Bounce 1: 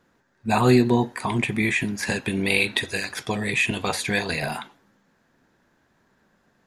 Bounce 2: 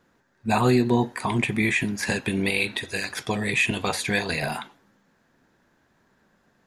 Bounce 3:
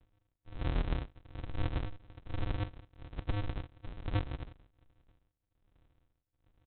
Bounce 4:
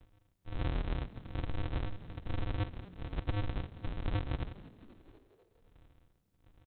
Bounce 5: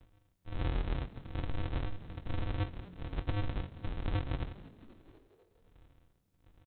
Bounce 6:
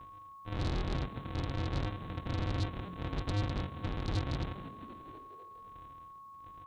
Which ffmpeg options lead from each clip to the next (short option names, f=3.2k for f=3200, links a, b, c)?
-af "alimiter=limit=-10dB:level=0:latency=1:release=282"
-af "acompressor=threshold=-27dB:ratio=6,tremolo=f=1.2:d=0.94,aresample=8000,acrusher=samples=39:mix=1:aa=0.000001,aresample=44100,volume=-1dB"
-filter_complex "[0:a]asplit=2[a][b];[b]alimiter=level_in=7.5dB:limit=-24dB:level=0:latency=1:release=170,volume=-7.5dB,volume=2dB[c];[a][c]amix=inputs=2:normalize=0,acompressor=threshold=-30dB:ratio=6,asplit=6[d][e][f][g][h][i];[e]adelay=248,afreqshift=81,volume=-20.5dB[j];[f]adelay=496,afreqshift=162,volume=-24.9dB[k];[g]adelay=744,afreqshift=243,volume=-29.4dB[l];[h]adelay=992,afreqshift=324,volume=-33.8dB[m];[i]adelay=1240,afreqshift=405,volume=-38.2dB[n];[d][j][k][l][m][n]amix=inputs=6:normalize=0"
-filter_complex "[0:a]asplit=2[a][b];[b]adelay=22,volume=-11dB[c];[a][c]amix=inputs=2:normalize=0"
-af "highpass=f=86:p=1,aeval=exprs='val(0)+0.00158*sin(2*PI*1100*n/s)':c=same,aeval=exprs='0.0891*sin(PI/2*2.82*val(0)/0.0891)':c=same,volume=-5.5dB"